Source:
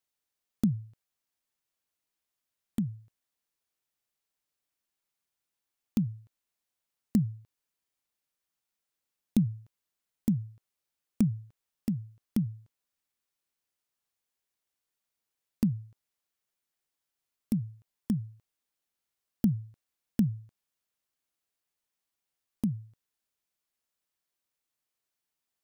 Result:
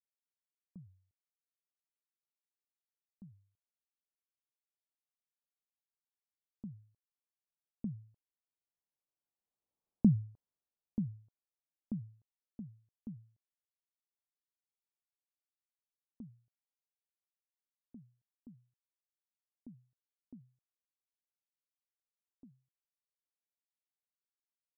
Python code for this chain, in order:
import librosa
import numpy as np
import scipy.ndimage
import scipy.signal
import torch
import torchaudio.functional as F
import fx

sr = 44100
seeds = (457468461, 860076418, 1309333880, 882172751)

y = fx.speed_glide(x, sr, from_pct=80, to_pct=127)
y = fx.doppler_pass(y, sr, speed_mps=13, closest_m=5.4, pass_at_s=9.92)
y = scipy.signal.sosfilt(scipy.signal.butter(4, 1000.0, 'lowpass', fs=sr, output='sos'), y)